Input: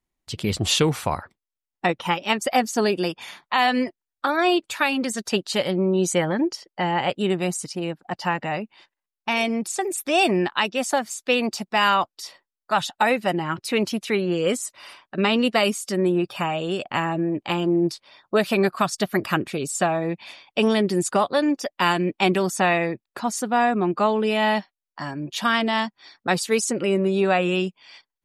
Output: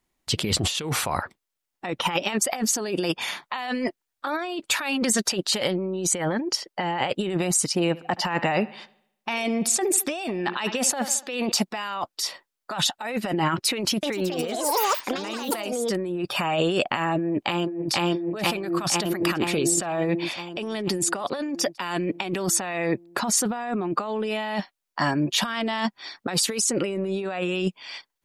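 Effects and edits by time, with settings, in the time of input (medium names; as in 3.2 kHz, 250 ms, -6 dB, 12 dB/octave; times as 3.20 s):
7.81–11.52 s: bucket-brigade echo 73 ms, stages 2048, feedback 50%, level -22.5 dB
13.74–16.31 s: ever faster or slower copies 288 ms, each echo +5 st, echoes 3
17.19–17.93 s: echo throw 480 ms, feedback 65%, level -2 dB
whole clip: bass shelf 140 Hz -6.5 dB; compressor with a negative ratio -29 dBFS, ratio -1; trim +3 dB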